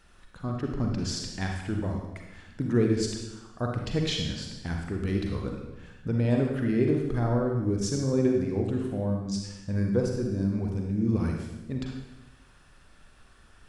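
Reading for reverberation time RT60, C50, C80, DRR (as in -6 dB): 1.0 s, 2.0 dB, 5.0 dB, 1.0 dB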